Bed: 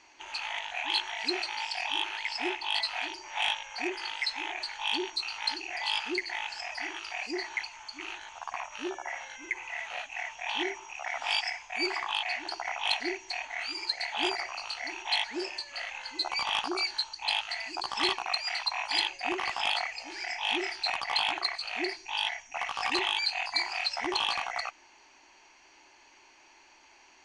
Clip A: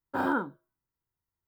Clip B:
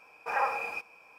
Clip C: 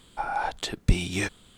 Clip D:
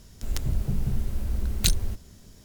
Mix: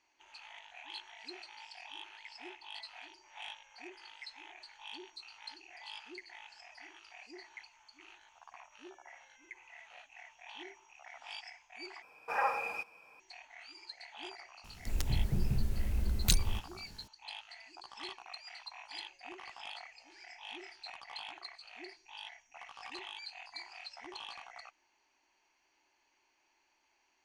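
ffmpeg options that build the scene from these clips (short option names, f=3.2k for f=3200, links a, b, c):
-filter_complex "[0:a]volume=-17dB,asplit=2[a][b];[a]atrim=end=12.024[c];[2:a]atrim=end=1.18,asetpts=PTS-STARTPTS,volume=-3dB[d];[b]atrim=start=13.196[e];[4:a]atrim=end=2.44,asetpts=PTS-STARTPTS,volume=-5dB,afade=t=in:d=0.004:c=hsin,afade=t=out:st=2.436:d=0.004:c=hsin,adelay=14640[f];[c][d]acrossfade=d=0.004:c1=hsin:c2=hsin[g];[g][e]acrossfade=d=0.004:c1=hsin:c2=hsin[h];[h][f]amix=inputs=2:normalize=0"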